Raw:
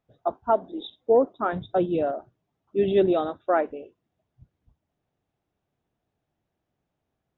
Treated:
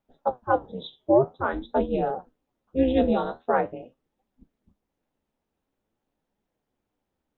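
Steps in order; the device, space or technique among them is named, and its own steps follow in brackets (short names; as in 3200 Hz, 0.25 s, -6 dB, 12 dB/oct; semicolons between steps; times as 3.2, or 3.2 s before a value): alien voice (ring modulator 130 Hz; flange 0.47 Hz, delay 4.7 ms, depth 9.7 ms, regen +67%); gain +6.5 dB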